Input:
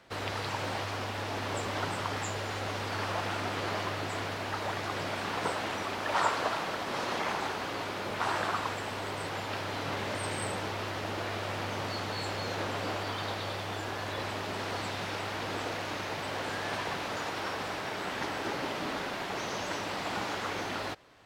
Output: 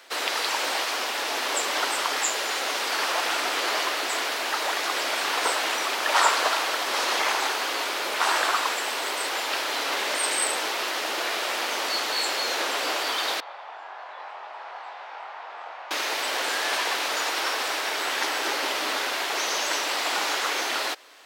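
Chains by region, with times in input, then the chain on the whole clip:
0:13.40–0:15.91: four-pole ladder band-pass 950 Hz, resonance 45% + double-tracking delay 23 ms −4.5 dB
whole clip: high-pass filter 290 Hz 24 dB per octave; spectral tilt +3 dB per octave; level +7 dB

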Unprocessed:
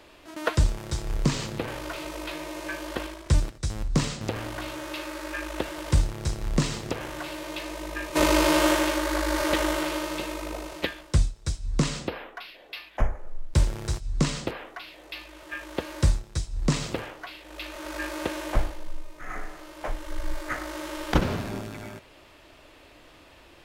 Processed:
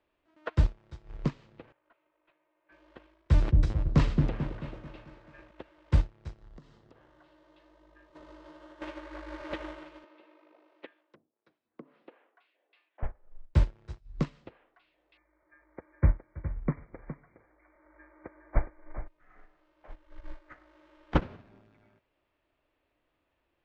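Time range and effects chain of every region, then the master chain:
0:01.72–0:02.72: noise gate −31 dBFS, range −34 dB + mid-hump overdrive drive 31 dB, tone 5,800 Hz, clips at −26 dBFS + high-frequency loss of the air 320 metres
0:03.28–0:05.51: echo whose low-pass opens from repeat to repeat 220 ms, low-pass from 400 Hz, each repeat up 1 octave, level 0 dB + level that may fall only so fast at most 42 dB per second
0:06.38–0:08.82: parametric band 2,400 Hz −10 dB 0.38 octaves + downward compressor 4 to 1, threshold −27 dBFS + one half of a high-frequency compander encoder only
0:10.04–0:13.03: treble cut that deepens with the level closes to 510 Hz, closed at −18 dBFS + high-pass filter 260 Hz 24 dB per octave + high-frequency loss of the air 99 metres
0:15.17–0:19.08: linear-phase brick-wall low-pass 2,400 Hz + single-tap delay 414 ms −4.5 dB
whole clip: low-pass filter 2,800 Hz 12 dB per octave; expander for the loud parts 2.5 to 1, over −32 dBFS

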